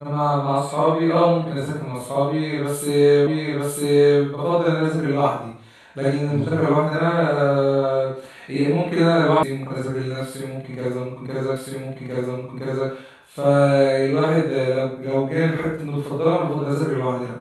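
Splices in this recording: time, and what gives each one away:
0:03.27: the same again, the last 0.95 s
0:09.43: cut off before it has died away
0:11.56: the same again, the last 1.32 s

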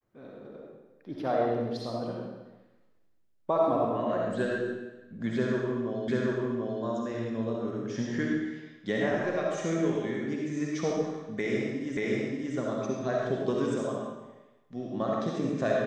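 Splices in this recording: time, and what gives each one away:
0:06.08: the same again, the last 0.74 s
0:11.97: the same again, the last 0.58 s

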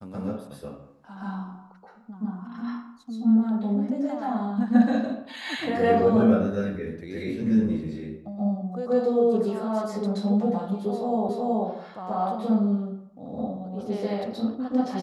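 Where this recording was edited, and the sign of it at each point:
0:11.29: the same again, the last 0.37 s

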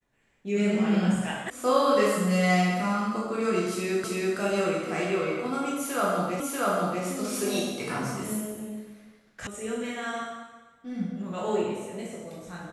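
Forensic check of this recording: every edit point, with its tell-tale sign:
0:01.50: cut off before it has died away
0:04.04: the same again, the last 0.33 s
0:06.40: the same again, the last 0.64 s
0:09.47: cut off before it has died away

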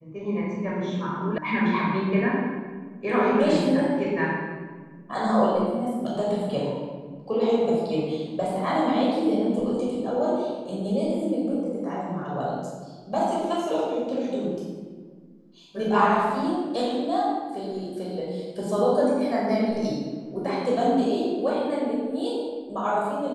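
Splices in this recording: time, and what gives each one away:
0:01.38: cut off before it has died away

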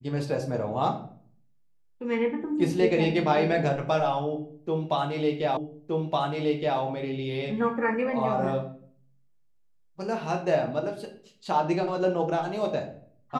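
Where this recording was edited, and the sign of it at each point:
0:05.57: the same again, the last 1.22 s

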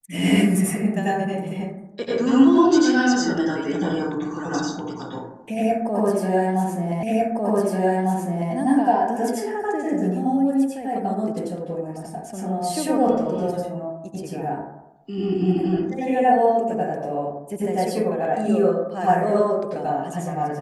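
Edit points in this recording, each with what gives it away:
0:07.03: the same again, the last 1.5 s

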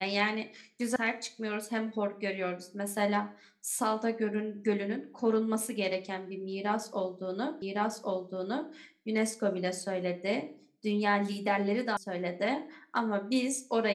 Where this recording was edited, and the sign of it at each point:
0:00.96: cut off before it has died away
0:07.62: the same again, the last 1.11 s
0:11.97: cut off before it has died away

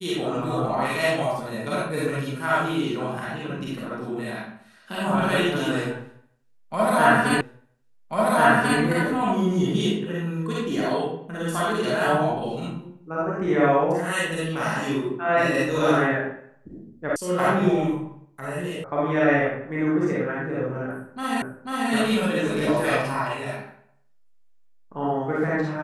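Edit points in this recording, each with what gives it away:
0:07.41: the same again, the last 1.39 s
0:17.16: cut off before it has died away
0:18.84: cut off before it has died away
0:21.42: the same again, the last 0.49 s

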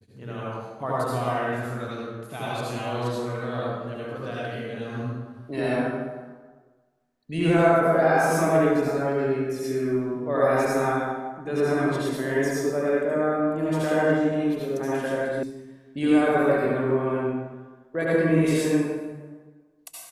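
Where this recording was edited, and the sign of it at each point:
0:15.43: cut off before it has died away

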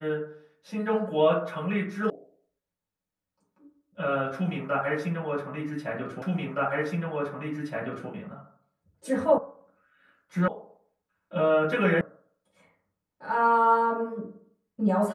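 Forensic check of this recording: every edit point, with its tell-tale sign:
0:02.10: cut off before it has died away
0:06.22: the same again, the last 1.87 s
0:09.38: cut off before it has died away
0:10.48: cut off before it has died away
0:12.01: cut off before it has died away

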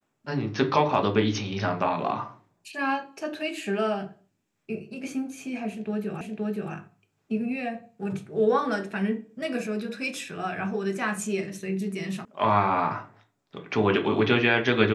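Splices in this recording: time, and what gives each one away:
0:06.21: the same again, the last 0.52 s
0:12.25: cut off before it has died away

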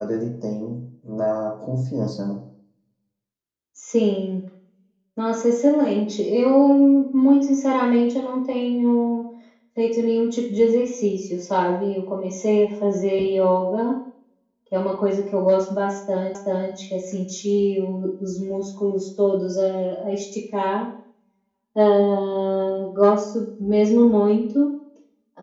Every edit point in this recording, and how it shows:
0:16.35: the same again, the last 0.38 s

